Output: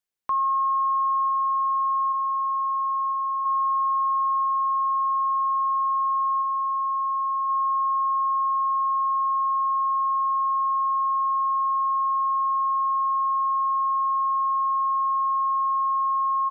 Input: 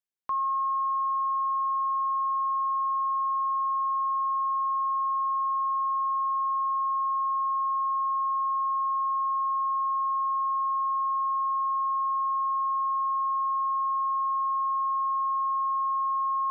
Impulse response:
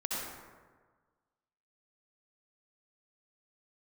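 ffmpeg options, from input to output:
-filter_complex "[0:a]asplit=3[a][b][c];[a]afade=t=out:st=2.12:d=0.02[d];[b]lowpass=1.1k,afade=t=in:st=2.12:d=0.02,afade=t=out:st=3.44:d=0.02[e];[c]afade=t=in:st=3.44:d=0.02[f];[d][e][f]amix=inputs=3:normalize=0,asplit=3[g][h][i];[g]afade=t=out:st=6.41:d=0.02[j];[h]asplit=2[k][l];[l]adelay=18,volume=-12.5dB[m];[k][m]amix=inputs=2:normalize=0,afade=t=in:st=6.41:d=0.02,afade=t=out:st=7.48:d=0.02[n];[i]afade=t=in:st=7.48:d=0.02[o];[j][n][o]amix=inputs=3:normalize=0,aecho=1:1:993:0.0794,volume=4.5dB"

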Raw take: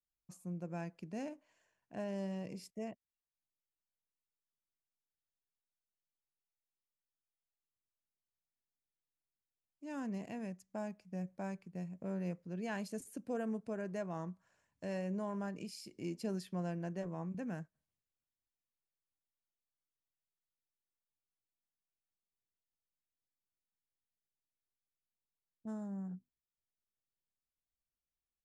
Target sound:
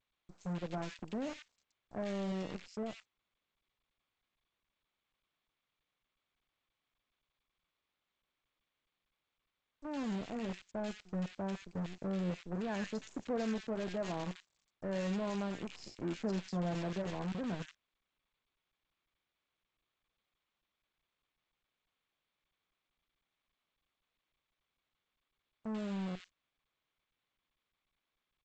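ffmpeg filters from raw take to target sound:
-filter_complex "[0:a]acrusher=bits=8:dc=4:mix=0:aa=0.000001,acrossover=split=1700[a][b];[b]adelay=90[c];[a][c]amix=inputs=2:normalize=0,volume=2.5dB" -ar 16000 -c:a g722

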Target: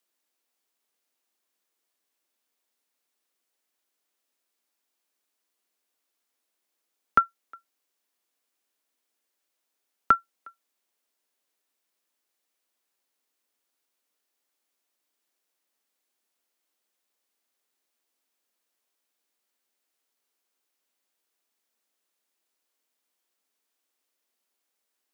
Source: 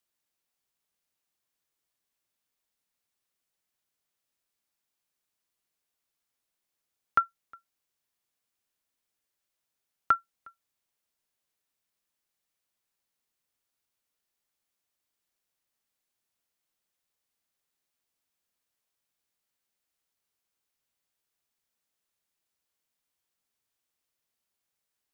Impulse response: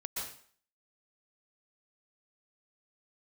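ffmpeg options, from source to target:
-filter_complex "[0:a]equalizer=f=220:t=o:w=1.4:g=13,acrossover=split=320[a][b];[a]acrusher=bits=5:dc=4:mix=0:aa=0.000001[c];[c][b]amix=inputs=2:normalize=0,volume=3.5dB"

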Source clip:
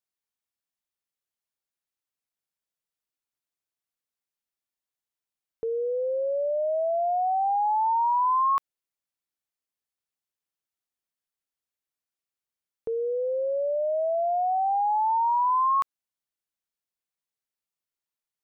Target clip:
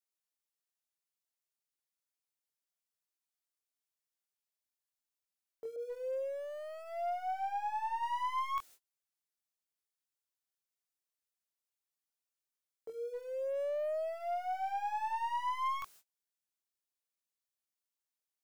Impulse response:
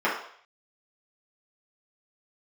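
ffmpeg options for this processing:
-filter_complex "[0:a]aeval=exprs='val(0)+0.5*0.00501*sgn(val(0))':c=same,bandreject=f=60:t=h:w=6,bandreject=f=120:t=h:w=6,bandreject=f=180:t=h:w=6,bandreject=f=240:t=h:w=6,bandreject=f=300:t=h:w=6,bandreject=f=360:t=h:w=6,bandreject=f=420:t=h:w=6,bandreject=f=480:t=h:w=6,agate=range=-31dB:threshold=-44dB:ratio=16:detection=peak,bass=f=250:g=-6,treble=f=4k:g=5,aeval=exprs='clip(val(0),-1,0.0562)':c=same,flanger=delay=18.5:depth=4.6:speed=0.42,asettb=1/sr,asplit=3[a][b][c];[a]atrim=end=5.764[d];[b]atrim=start=5.76:end=8.03,asetpts=PTS-STARTPTS,afade=t=in:d=0.004:c=qsin,afade=t=out:st=2.266:d=0.004:c=qsin,adynamicequalizer=threshold=0.0178:dfrequency=1600:dqfactor=0.7:tfrequency=1600:tqfactor=0.7:attack=5:release=100:ratio=0.375:range=2:mode=cutabove:tftype=highshelf[e];[c]atrim=start=8.026[f];[d][e]acrossfade=d=0.004:c1=hsin:c2=qsin[g];[g][f]acrossfade=d=0.004:c1=qsin:c2=hsin,volume=-8.5dB"

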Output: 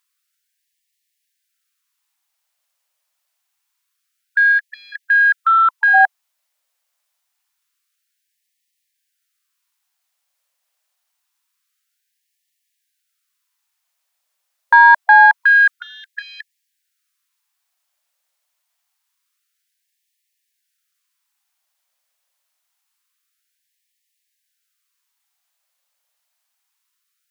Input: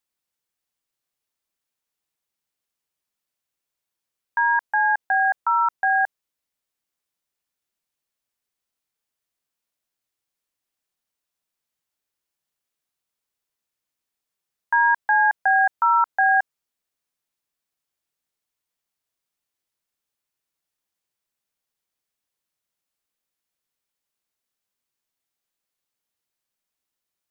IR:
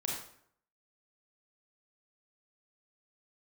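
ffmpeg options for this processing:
-af "acontrast=36,aeval=exprs='val(0)+0.00224*(sin(2*PI*60*n/s)+sin(2*PI*2*60*n/s)/2+sin(2*PI*3*60*n/s)/3+sin(2*PI*4*60*n/s)/4+sin(2*PI*5*60*n/s)/5)':c=same,afftfilt=real='re*gte(b*sr/1024,500*pow(1700/500,0.5+0.5*sin(2*PI*0.26*pts/sr)))':imag='im*gte(b*sr/1024,500*pow(1700/500,0.5+0.5*sin(2*PI*0.26*pts/sr)))':win_size=1024:overlap=0.75,volume=5dB"

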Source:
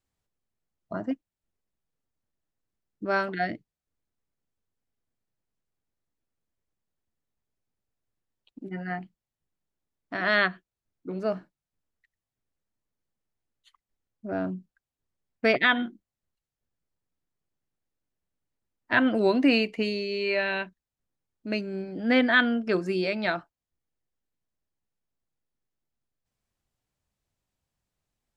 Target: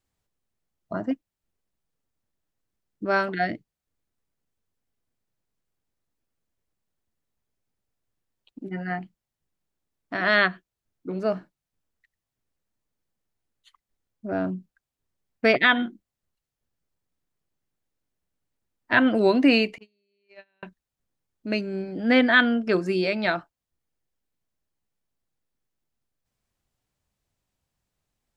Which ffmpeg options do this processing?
-filter_complex "[0:a]asettb=1/sr,asplit=3[a][b][c];[a]atrim=end=19.784[d];[b]atrim=start=19.78:end=20.63,asetpts=PTS-STARTPTS,afade=t=in:d=0.004:c=qsin,afade=t=out:st=0.846:d=0.004:c=qsin,agate=range=-47dB:threshold=-21dB:ratio=16:detection=peak[e];[c]atrim=start=20.626[f];[d][e]acrossfade=d=0.004:c1=hsin:c2=qsin[g];[g][f]acrossfade=d=0.004:c1=qsin:c2=hsin,volume=3dB"

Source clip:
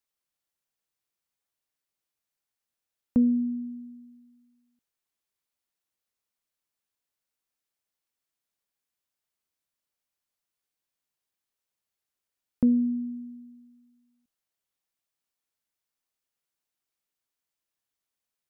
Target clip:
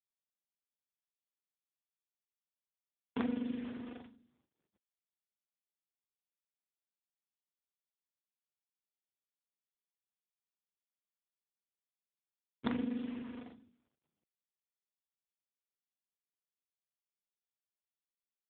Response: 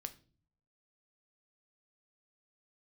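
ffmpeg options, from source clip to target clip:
-filter_complex "[0:a]highpass=51,bandreject=f=50:t=h:w=6,bandreject=f=100:t=h:w=6,bandreject=f=150:t=h:w=6,bandreject=f=200:t=h:w=6,bandreject=f=250:t=h:w=6,bandreject=f=300:t=h:w=6,bandreject=f=350:t=h:w=6,asplit=2[a][b];[b]acompressor=threshold=-31dB:ratio=16,volume=-2dB[c];[a][c]amix=inputs=2:normalize=0,asoftclip=type=tanh:threshold=-14.5dB,tremolo=f=24:d=0.788,aresample=8000,acrusher=bits=4:dc=4:mix=0:aa=0.000001,aresample=44100[d];[1:a]atrim=start_sample=2205,asetrate=36162,aresample=44100[e];[d][e]afir=irnorm=-1:irlink=0,volume=1dB" -ar 8000 -c:a libopencore_amrnb -b:a 4750

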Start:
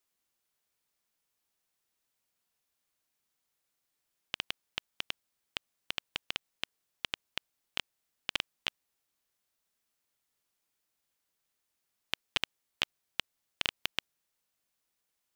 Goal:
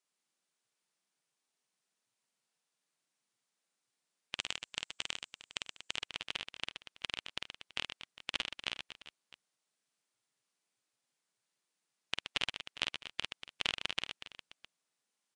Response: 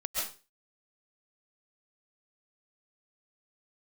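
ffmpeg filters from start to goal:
-filter_complex "[0:a]asettb=1/sr,asplit=3[a][b][c];[a]atrim=end=4.354[d];[b]atrim=start=4.35:end=5.96,asetpts=PTS-STARTPTS,afade=t=in:d=0.004:c=qsin,afade=t=out:st=1.606:d=0.004:c=qsin,lowpass=f=7.6k:t=q:w=5.1[e];[c]atrim=start=5.956[f];[d][e]acrossfade=d=0.004:c1=hsin:c2=qsin[g];[g][f]acrossfade=d=0.004:c1=qsin:c2=hsin,aecho=1:1:50|125|237.5|406.2|659.4:0.631|0.398|0.251|0.158|0.1,volume=-3.5dB" -ar 22050 -c:a libvorbis -b:a 64k

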